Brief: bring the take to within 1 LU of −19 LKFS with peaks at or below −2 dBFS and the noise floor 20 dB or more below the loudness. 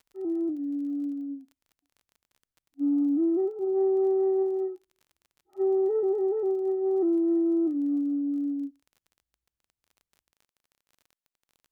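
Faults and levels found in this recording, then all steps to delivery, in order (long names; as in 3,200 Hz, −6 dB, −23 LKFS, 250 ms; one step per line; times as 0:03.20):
crackle rate 27 per second; integrated loudness −27.0 LKFS; sample peak −19.0 dBFS; target loudness −19.0 LKFS
→ click removal
level +8 dB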